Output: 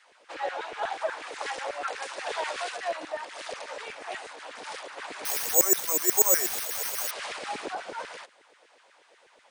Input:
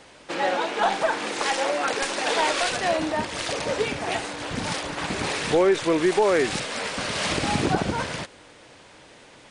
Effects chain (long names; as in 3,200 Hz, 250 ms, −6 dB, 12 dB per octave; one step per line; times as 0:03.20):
auto-filter high-pass saw down 8.2 Hz 380–1,900 Hz
0:05.25–0:07.11: bad sample-rate conversion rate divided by 6×, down none, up zero stuff
level −12 dB